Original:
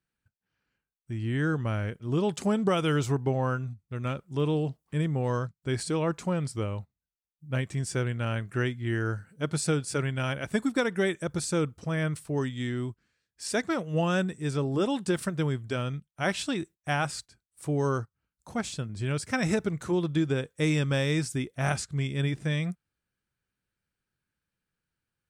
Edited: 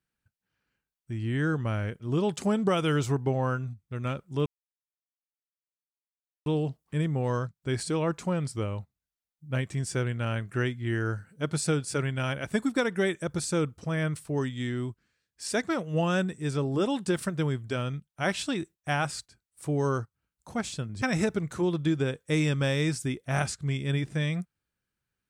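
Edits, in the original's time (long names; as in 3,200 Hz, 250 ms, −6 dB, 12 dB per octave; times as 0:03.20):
0:04.46: splice in silence 2.00 s
0:19.02–0:19.32: remove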